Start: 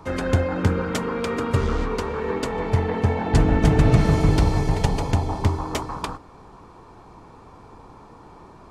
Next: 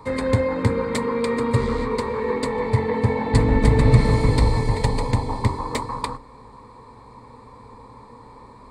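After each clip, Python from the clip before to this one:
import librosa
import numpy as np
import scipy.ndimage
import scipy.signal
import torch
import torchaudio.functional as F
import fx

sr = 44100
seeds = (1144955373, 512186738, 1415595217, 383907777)

y = fx.ripple_eq(x, sr, per_octave=0.97, db=12)
y = y * librosa.db_to_amplitude(-1.0)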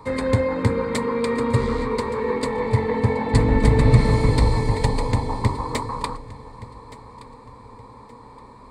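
y = fx.echo_feedback(x, sr, ms=1171, feedback_pct=27, wet_db=-18.5)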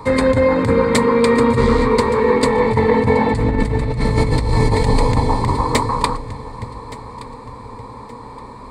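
y = fx.over_compress(x, sr, threshold_db=-21.0, ratio=-1.0)
y = y * librosa.db_to_amplitude(7.0)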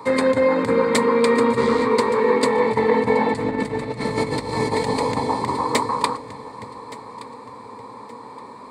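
y = scipy.signal.sosfilt(scipy.signal.butter(2, 220.0, 'highpass', fs=sr, output='sos'), x)
y = y * librosa.db_to_amplitude(-2.5)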